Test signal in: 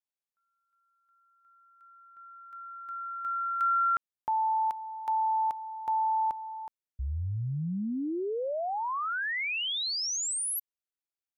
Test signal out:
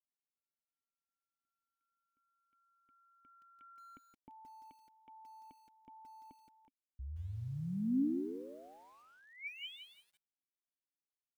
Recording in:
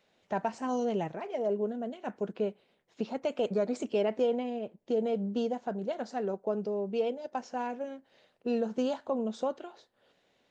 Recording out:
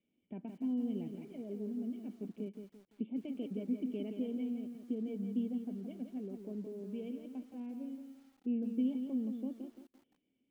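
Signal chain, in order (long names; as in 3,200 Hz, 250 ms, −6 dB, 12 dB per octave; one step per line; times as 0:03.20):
formant resonators in series i
high-shelf EQ 2,900 Hz −7.5 dB
feedback echo at a low word length 170 ms, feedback 35%, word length 11 bits, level −7 dB
level +1.5 dB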